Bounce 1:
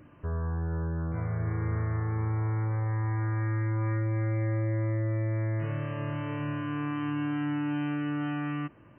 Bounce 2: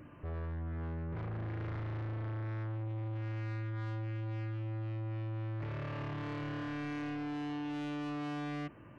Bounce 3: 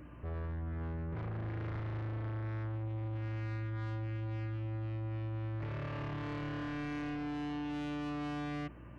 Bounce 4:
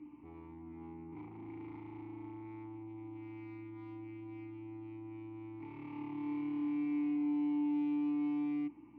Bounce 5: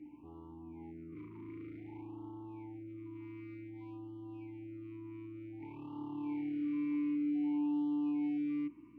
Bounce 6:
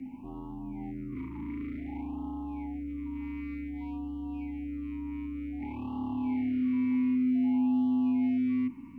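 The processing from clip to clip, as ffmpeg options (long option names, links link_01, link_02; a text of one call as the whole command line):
ffmpeg -i in.wav -af "asoftclip=type=tanh:threshold=-38dB,volume=1dB" out.wav
ffmpeg -i in.wav -af "aeval=exprs='val(0)+0.00224*(sin(2*PI*60*n/s)+sin(2*PI*2*60*n/s)/2+sin(2*PI*3*60*n/s)/3+sin(2*PI*4*60*n/s)/4+sin(2*PI*5*60*n/s)/5)':channel_layout=same" out.wav
ffmpeg -i in.wav -filter_complex "[0:a]asplit=3[link_01][link_02][link_03];[link_01]bandpass=frequency=300:width_type=q:width=8,volume=0dB[link_04];[link_02]bandpass=frequency=870:width_type=q:width=8,volume=-6dB[link_05];[link_03]bandpass=frequency=2240:width_type=q:width=8,volume=-9dB[link_06];[link_04][link_05][link_06]amix=inputs=3:normalize=0,volume=6.5dB" out.wav
ffmpeg -i in.wav -af "afftfilt=real='re*(1-between(b*sr/1024,640*pow(2000/640,0.5+0.5*sin(2*PI*0.54*pts/sr))/1.41,640*pow(2000/640,0.5+0.5*sin(2*PI*0.54*pts/sr))*1.41))':imag='im*(1-between(b*sr/1024,640*pow(2000/640,0.5+0.5*sin(2*PI*0.54*pts/sr))/1.41,640*pow(2000/640,0.5+0.5*sin(2*PI*0.54*pts/sr))*1.41))':win_size=1024:overlap=0.75" out.wav
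ffmpeg -i in.wav -filter_complex "[0:a]asplit=2[link_01][link_02];[link_02]alimiter=level_in=16.5dB:limit=-24dB:level=0:latency=1:release=22,volume=-16.5dB,volume=-2.5dB[link_03];[link_01][link_03]amix=inputs=2:normalize=0,afreqshift=-40,volume=5.5dB" out.wav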